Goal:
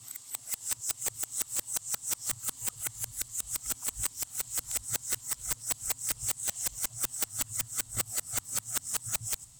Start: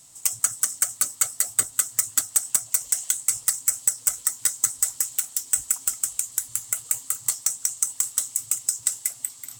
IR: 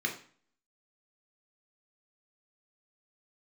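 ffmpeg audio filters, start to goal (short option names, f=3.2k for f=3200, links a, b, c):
-filter_complex "[0:a]areverse,acrossover=split=450|1800[a][b][c];[c]alimiter=limit=-14.5dB:level=0:latency=1:release=86[d];[a][b][d]amix=inputs=3:normalize=0,asubboost=boost=6.5:cutoff=140,aeval=exprs='(mod(6.31*val(0)+1,2)-1)/6.31':c=same,volume=-4.5dB"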